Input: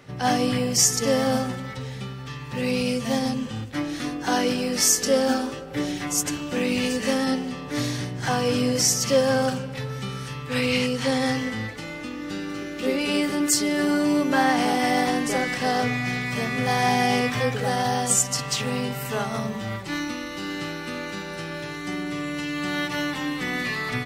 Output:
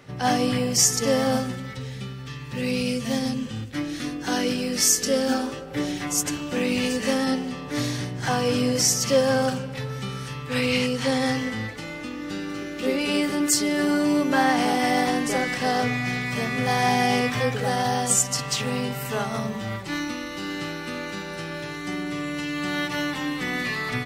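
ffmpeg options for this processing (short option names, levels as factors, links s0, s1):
-filter_complex "[0:a]asettb=1/sr,asplit=3[s0][s1][s2];[s0]atrim=end=1.404[s3];[s1]atrim=start=1.4:end=5.32,asetpts=PTS-STARTPTS,afade=t=in:d=0.004:c=qsin,afade=t=out:st=3.916:d=0.004:c=qsin,equalizer=f=850:w=1.1:g=-6[s4];[s2]atrim=start=5.316[s5];[s3][s4]acrossfade=d=0.004:c1=hsin:c2=qsin[s6];[s6][s5]acrossfade=d=0.004:c1=qsin:c2=hsin"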